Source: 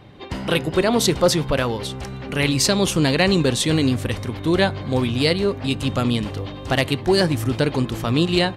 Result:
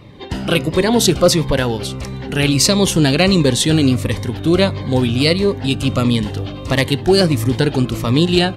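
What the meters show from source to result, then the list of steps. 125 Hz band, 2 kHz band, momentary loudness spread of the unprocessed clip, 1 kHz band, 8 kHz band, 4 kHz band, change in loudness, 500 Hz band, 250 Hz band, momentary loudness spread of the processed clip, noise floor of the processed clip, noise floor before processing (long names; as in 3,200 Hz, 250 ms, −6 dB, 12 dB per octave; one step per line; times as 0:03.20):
+5.5 dB, +2.5 dB, 9 LU, +2.0 dB, +5.5 dB, +4.5 dB, +4.5 dB, +4.0 dB, +5.0 dB, 9 LU, −28 dBFS, −33 dBFS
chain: phaser whose notches keep moving one way falling 1.5 Hz
level +5.5 dB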